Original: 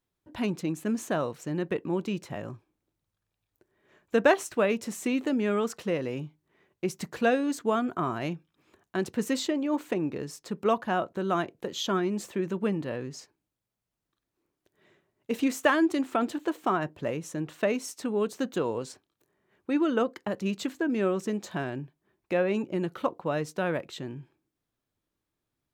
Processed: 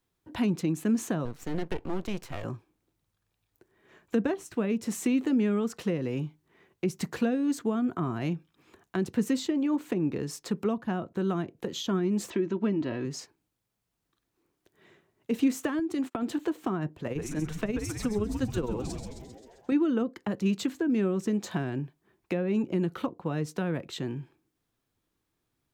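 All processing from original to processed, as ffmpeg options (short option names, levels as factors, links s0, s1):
-filter_complex "[0:a]asettb=1/sr,asplit=3[s0][s1][s2];[s0]atrim=end=1.254[s3];[s1]atrim=start=1.25:end=2.44,asetpts=PTS-STARTPTS,afade=t=in:d=0.004:c=qsin,afade=t=out:st=1.186:d=0.004:c=qsin,asubboost=boost=12:cutoff=81,aeval=exprs='max(val(0),0)':c=same[s4];[s2]atrim=start=2.436[s5];[s3][s4]acrossfade=d=0.004:c1=hsin:c2=qsin[s6];[s6][s5]acrossfade=d=0.004:c1=qsin:c2=hsin,asettb=1/sr,asplit=3[s7][s8][s9];[s7]atrim=end=12.304[s10];[s8]atrim=start=12.3:end=13.05,asetpts=PTS-STARTPTS,afade=t=in:d=0.004:c=qsin,afade=t=out:st=0.746:d=0.004:c=qsin,lowpass=f=6200:w=0.5412,lowpass=f=6200:w=1.3066,aecho=1:1:3.1:0.56,atrim=end_sample=33075[s11];[s9]atrim=start=13.046[s12];[s10][s11]acrossfade=d=0.004:c1=hsin:c2=qsin[s13];[s13][s12]acrossfade=d=0.004:c1=qsin:c2=hsin,asettb=1/sr,asplit=3[s14][s15][s16];[s14]atrim=end=15.794[s17];[s15]atrim=start=15.79:end=16.28,asetpts=PTS-STARTPTS,afade=t=in:d=0.004:c=qsin,afade=t=out:st=0.486:d=0.004:c=qsin,agate=range=0.0158:threshold=0.00891:ratio=16:release=100:detection=peak,acompressor=threshold=0.0501:ratio=10:attack=3.2:release=140:knee=1:detection=peak[s18];[s16]atrim=start=16.276[s19];[s17][s18]acrossfade=d=0.004:c1=hsin:c2=qsin[s20];[s20][s19]acrossfade=d=0.004:c1=qsin:c2=hsin,asettb=1/sr,asplit=3[s21][s22][s23];[s21]atrim=end=16.964[s24];[s22]atrim=start=16.96:end=19.72,asetpts=PTS-STARTPTS,afade=t=in:d=0.004:c=qsin,afade=t=out:st=2.756:d=0.004:c=qsin,tremolo=f=19:d=0.62,asplit=9[s25][s26][s27][s28][s29][s30][s31][s32][s33];[s26]adelay=132,afreqshift=-150,volume=0.398[s34];[s27]adelay=264,afreqshift=-300,volume=0.243[s35];[s28]adelay=396,afreqshift=-450,volume=0.148[s36];[s29]adelay=528,afreqshift=-600,volume=0.0902[s37];[s30]adelay=660,afreqshift=-750,volume=0.055[s38];[s31]adelay=792,afreqshift=-900,volume=0.0335[s39];[s32]adelay=924,afreqshift=-1050,volume=0.0204[s40];[s33]adelay=1056,afreqshift=-1200,volume=0.0124[s41];[s25][s34][s35][s36][s37][s38][s39][s40][s41]amix=inputs=9:normalize=0,atrim=end_sample=121716[s42];[s23]atrim=start=19.716[s43];[s24][s42]acrossfade=d=0.004:c1=hsin:c2=qsin[s44];[s44][s43]acrossfade=d=0.004:c1=qsin:c2=hsin,bandreject=f=590:w=12,acrossover=split=310[s45][s46];[s46]acompressor=threshold=0.0126:ratio=10[s47];[s45][s47]amix=inputs=2:normalize=0,volume=1.68"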